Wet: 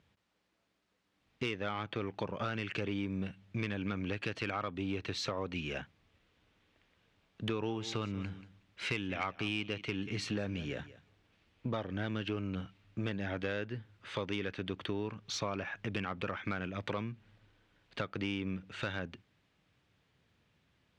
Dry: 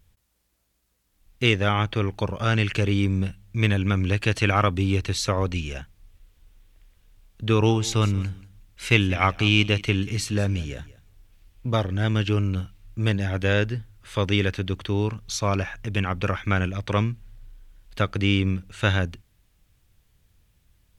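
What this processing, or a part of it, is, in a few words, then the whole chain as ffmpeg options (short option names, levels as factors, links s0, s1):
AM radio: -af "highpass=170,lowpass=3500,acompressor=threshold=0.0251:ratio=5,asoftclip=type=tanh:threshold=0.0668"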